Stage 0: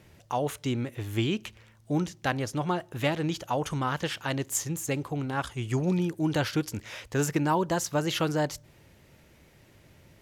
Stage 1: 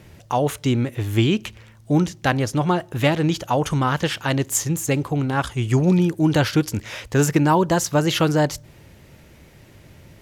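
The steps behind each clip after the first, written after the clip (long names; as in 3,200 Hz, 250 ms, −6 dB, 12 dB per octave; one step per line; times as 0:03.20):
low-shelf EQ 250 Hz +3.5 dB
level +7.5 dB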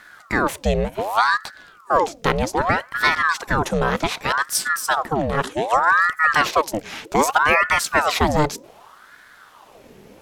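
ring modulator whose carrier an LFO sweeps 950 Hz, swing 70%, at 0.65 Hz
level +3 dB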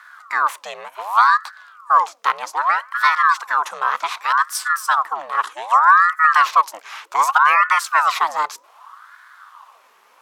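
high-pass with resonance 1,100 Hz, resonance Q 4.1
level −4 dB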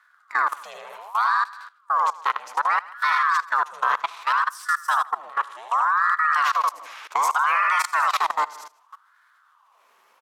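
on a send: repeating echo 78 ms, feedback 43%, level −6 dB
on the sum: output level in coarse steps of 20 dB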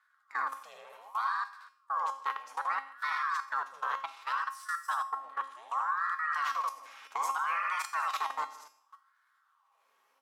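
tuned comb filter 270 Hz, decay 0.49 s, harmonics all, mix 80%
on a send at −13 dB: convolution reverb RT60 0.55 s, pre-delay 3 ms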